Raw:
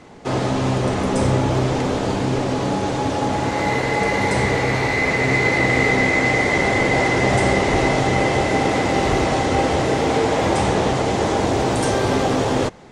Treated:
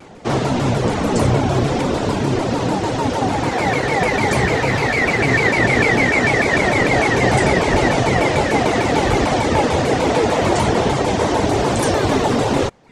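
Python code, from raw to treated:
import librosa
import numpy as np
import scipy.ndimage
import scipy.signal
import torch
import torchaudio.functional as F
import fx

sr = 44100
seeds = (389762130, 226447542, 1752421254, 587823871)

y = fx.dereverb_blind(x, sr, rt60_s=0.54)
y = fx.vibrato_shape(y, sr, shape='saw_down', rate_hz=6.7, depth_cents=250.0)
y = y * 10.0 ** (3.5 / 20.0)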